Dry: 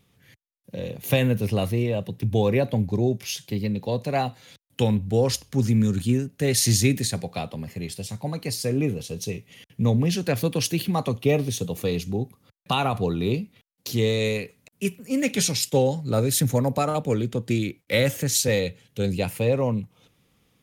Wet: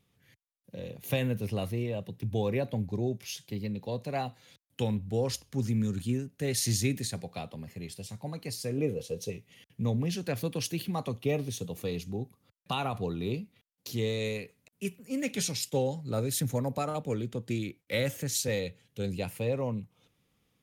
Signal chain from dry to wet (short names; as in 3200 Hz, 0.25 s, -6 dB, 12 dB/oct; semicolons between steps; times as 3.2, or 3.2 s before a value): 8.78–9.3 bell 500 Hz +12.5 dB 0.43 oct; gain -8.5 dB